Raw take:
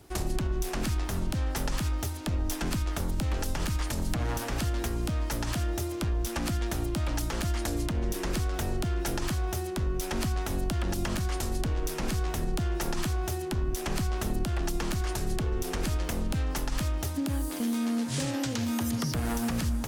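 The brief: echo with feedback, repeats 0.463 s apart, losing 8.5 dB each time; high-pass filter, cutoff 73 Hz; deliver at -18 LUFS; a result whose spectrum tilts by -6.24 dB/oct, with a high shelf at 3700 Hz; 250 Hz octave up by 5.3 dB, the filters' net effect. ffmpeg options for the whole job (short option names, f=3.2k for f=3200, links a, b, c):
-af "highpass=73,equalizer=f=250:t=o:g=6.5,highshelf=f=3.7k:g=-4,aecho=1:1:463|926|1389|1852:0.376|0.143|0.0543|0.0206,volume=11.5dB"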